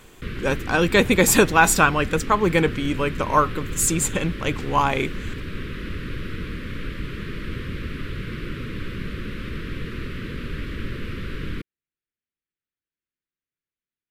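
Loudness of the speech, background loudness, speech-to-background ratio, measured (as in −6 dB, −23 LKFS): −20.0 LKFS, −33.0 LKFS, 13.0 dB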